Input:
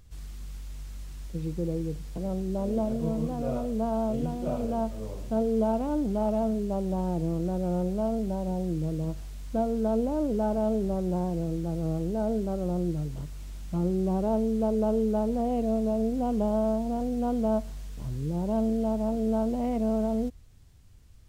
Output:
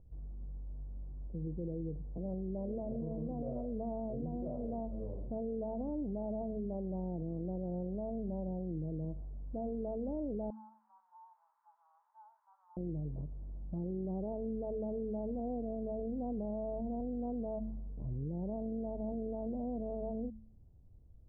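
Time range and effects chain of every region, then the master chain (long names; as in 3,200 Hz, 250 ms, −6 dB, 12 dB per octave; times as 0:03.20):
0:10.50–0:12.77: Chebyshev high-pass filter 880 Hz, order 8 + envelope flattener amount 50%
whole clip: inverse Chebyshev low-pass filter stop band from 4,100 Hz, stop band 80 dB; hum removal 109.7 Hz, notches 2; brickwall limiter −27 dBFS; level −4.5 dB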